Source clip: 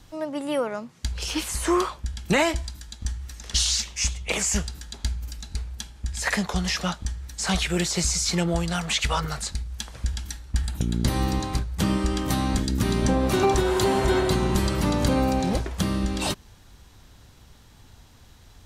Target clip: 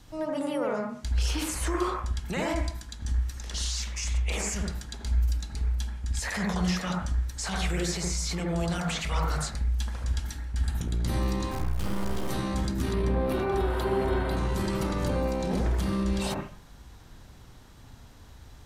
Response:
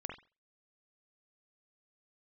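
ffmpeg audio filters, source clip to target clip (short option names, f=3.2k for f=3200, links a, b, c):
-filter_complex "[0:a]asettb=1/sr,asplit=3[a][b][c];[a]atrim=end=12.934[d];[b]atrim=start=12.93:end=14.37,asetpts=PTS-STARTPTS,afade=t=in:d=0.004:c=qsin,afade=t=out:st=1.436:d=0.004:c=qsin,equalizer=f=6.7k:t=o:w=0.84:g=-14[e];[c]atrim=start=14.366[f];[d][e]acrossfade=d=0.004:c1=hsin:c2=qsin[g];[g][f]acrossfade=d=0.004:c1=qsin:c2=hsin,alimiter=limit=-22dB:level=0:latency=1:release=11,asettb=1/sr,asplit=3[h][i][j];[h]atrim=end=11.514[k];[i]atrim=start=11.51:end=12.29,asetpts=PTS-STARTPTS,afade=t=in:d=0.004:c=qsin,afade=t=out:st=0.776:d=0.004:c=qsin,acrusher=bits=4:dc=4:mix=0:aa=0.000001[l];[j]atrim=start=12.286[m];[k][l]acrossfade=d=0.004:c1=hsin:c2=qsin[n];[n][m]acrossfade=d=0.004:c1=qsin:c2=hsin[o];[1:a]atrim=start_sample=2205,asetrate=29547,aresample=44100[p];[o][p]afir=irnorm=-1:irlink=0"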